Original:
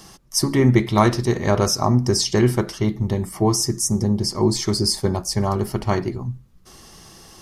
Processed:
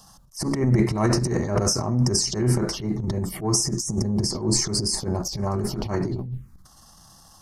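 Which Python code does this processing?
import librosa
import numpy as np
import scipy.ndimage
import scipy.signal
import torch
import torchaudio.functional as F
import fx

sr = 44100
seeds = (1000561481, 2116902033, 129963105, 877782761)

y = fx.env_phaser(x, sr, low_hz=340.0, high_hz=3400.0, full_db=-18.0)
y = fx.transient(y, sr, attack_db=-12, sustain_db=11)
y = y * librosa.db_to_amplitude(-4.0)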